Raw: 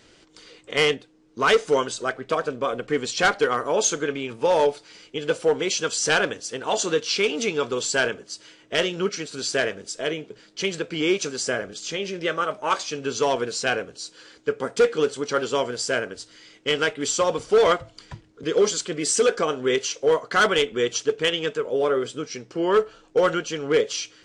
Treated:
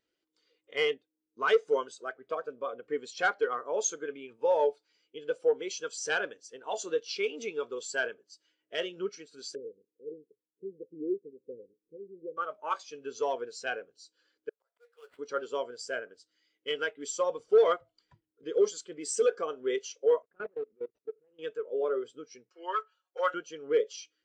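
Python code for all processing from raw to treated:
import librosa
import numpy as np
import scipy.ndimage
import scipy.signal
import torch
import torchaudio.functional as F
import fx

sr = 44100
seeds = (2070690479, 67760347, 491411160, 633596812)

y = fx.chain(x, sr, fx.law_mismatch(coded='A'),
    fx.cheby1_lowpass(hz=520.0, order=8), at=(9.55, 12.37))
y = fx.chain(y, sr, fx.highpass(hz=590.0, slope=24),
    fx.sample_hold(seeds[0], rate_hz=6100.0, jitter_pct=20),
    fx.auto_swell(attack_ms=545.0), at=(14.49, 15.19))
y = fx.chain(y, sr, fx.median_filter(points=41),
    fx.level_steps(step_db=23),
    fx.air_absorb(metres=210.0), at=(20.22, 21.39))
y = fx.chain(y, sr, fx.highpass(hz=860.0, slope=12),
    fx.comb(ms=5.5, depth=0.88), at=(22.49, 23.34))
y = fx.low_shelf(y, sr, hz=210.0, db=-10.5)
y = fx.spectral_expand(y, sr, expansion=1.5)
y = y * librosa.db_to_amplitude(-5.0)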